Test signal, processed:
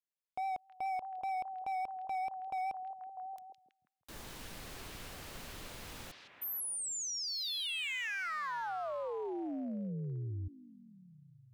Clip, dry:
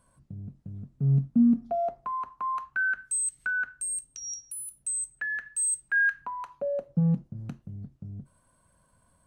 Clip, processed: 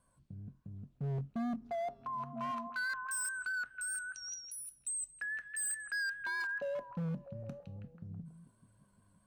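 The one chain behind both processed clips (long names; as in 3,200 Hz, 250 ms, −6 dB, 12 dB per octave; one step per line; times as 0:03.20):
echo through a band-pass that steps 162 ms, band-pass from 3,500 Hz, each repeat −0.7 octaves, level −1 dB
pitch vibrato 4.9 Hz 37 cents
hard clipping −26.5 dBFS
level −7.5 dB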